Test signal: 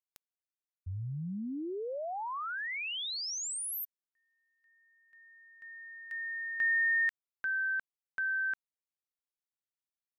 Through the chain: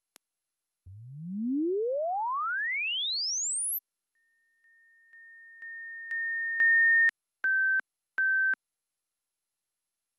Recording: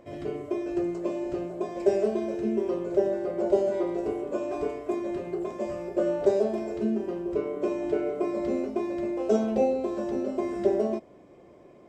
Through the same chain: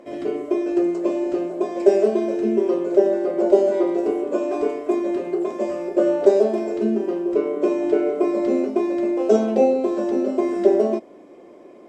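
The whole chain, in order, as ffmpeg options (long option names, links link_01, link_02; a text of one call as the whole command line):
ffmpeg -i in.wav -af "lowshelf=frequency=180:width_type=q:width=1.5:gain=-13,volume=6dB" -ar 44100 -c:a mp2 -b:a 128k out.mp2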